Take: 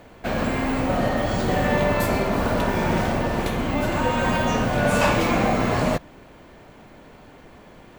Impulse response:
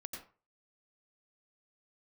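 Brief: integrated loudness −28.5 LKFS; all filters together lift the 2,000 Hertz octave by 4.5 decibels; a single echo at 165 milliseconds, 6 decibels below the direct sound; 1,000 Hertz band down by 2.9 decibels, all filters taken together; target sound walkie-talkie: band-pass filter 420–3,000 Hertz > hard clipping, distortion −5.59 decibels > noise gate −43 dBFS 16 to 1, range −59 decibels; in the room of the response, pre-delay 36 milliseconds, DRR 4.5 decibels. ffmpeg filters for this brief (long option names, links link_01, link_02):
-filter_complex "[0:a]equalizer=frequency=1000:width_type=o:gain=-5.5,equalizer=frequency=2000:width_type=o:gain=8.5,aecho=1:1:165:0.501,asplit=2[link_01][link_02];[1:a]atrim=start_sample=2205,adelay=36[link_03];[link_02][link_03]afir=irnorm=-1:irlink=0,volume=-2dB[link_04];[link_01][link_04]amix=inputs=2:normalize=0,highpass=420,lowpass=3000,asoftclip=type=hard:threshold=-26.5dB,agate=range=-59dB:threshold=-43dB:ratio=16,volume=-1dB"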